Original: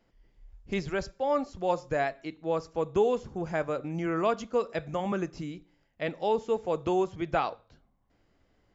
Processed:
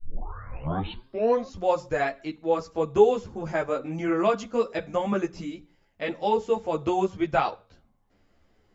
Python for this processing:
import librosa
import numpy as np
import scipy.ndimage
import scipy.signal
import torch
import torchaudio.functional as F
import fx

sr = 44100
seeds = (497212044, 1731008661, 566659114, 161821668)

y = fx.tape_start_head(x, sr, length_s=1.58)
y = fx.hum_notches(y, sr, base_hz=60, count=3)
y = fx.ensemble(y, sr)
y = F.gain(torch.from_numpy(y), 6.5).numpy()